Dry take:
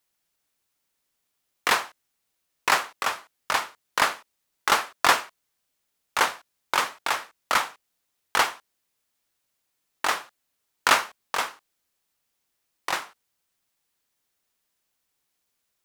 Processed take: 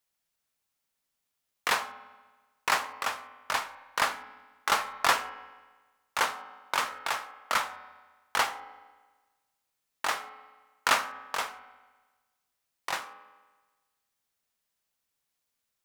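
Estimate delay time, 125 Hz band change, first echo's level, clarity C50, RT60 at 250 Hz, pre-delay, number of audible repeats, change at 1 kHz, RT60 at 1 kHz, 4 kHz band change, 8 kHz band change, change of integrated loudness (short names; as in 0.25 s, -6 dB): none, -4.5 dB, none, 13.5 dB, 1.3 s, 4 ms, none, -4.5 dB, 1.3 s, -5.0 dB, -5.0 dB, -5.0 dB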